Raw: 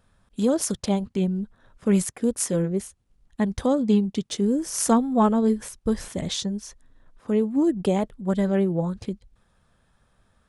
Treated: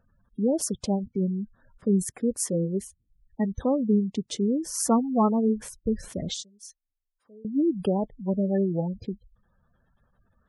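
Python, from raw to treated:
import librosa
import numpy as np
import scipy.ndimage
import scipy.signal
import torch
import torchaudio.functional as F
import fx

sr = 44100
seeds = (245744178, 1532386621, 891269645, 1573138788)

y = fx.spec_gate(x, sr, threshold_db=-20, keep='strong')
y = fx.pre_emphasis(y, sr, coefficient=0.97, at=(6.34, 7.45))
y = y * 10.0 ** (-2.5 / 20.0)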